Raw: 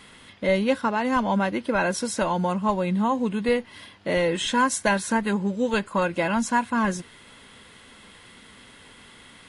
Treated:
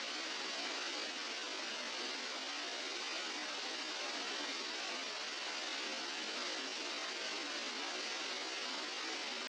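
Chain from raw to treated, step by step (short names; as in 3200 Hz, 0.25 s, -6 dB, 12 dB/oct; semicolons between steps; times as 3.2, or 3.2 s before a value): spectral contrast lowered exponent 0.3; steep high-pass 170 Hz 96 dB/oct; Paulstretch 7.2×, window 0.05 s, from 7.48; inverse Chebyshev low-pass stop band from 7600 Hz, stop band 40 dB; pitch shift +6 st; gain +10.5 dB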